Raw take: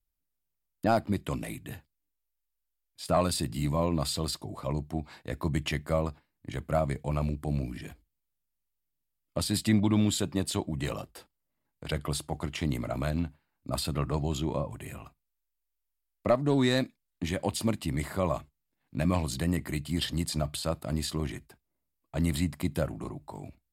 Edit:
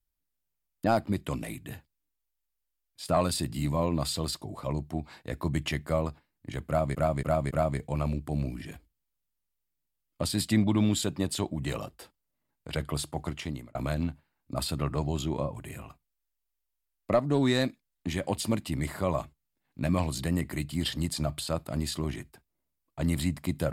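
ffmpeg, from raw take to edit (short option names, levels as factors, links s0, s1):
-filter_complex "[0:a]asplit=5[s0][s1][s2][s3][s4];[s0]atrim=end=6.952[s5];[s1]atrim=start=6.668:end=6.952[s6];[s2]atrim=start=6.668:end=6.952[s7];[s3]atrim=start=6.668:end=12.91,asetpts=PTS-STARTPTS,afade=t=out:st=5.782:d=0.46[s8];[s4]atrim=start=12.91,asetpts=PTS-STARTPTS,afade=t=in:d=0.004:c=hsin[s9];[s5][s6]acrossfade=d=0.004:c1=hsin:c2=hsin[s10];[s10][s7]acrossfade=d=0.004:c1=hsin:c2=hsin[s11];[s8][s9]concat=n=2:v=0:a=1[s12];[s11][s12]acrossfade=d=0.004:c1=hsin:c2=hsin"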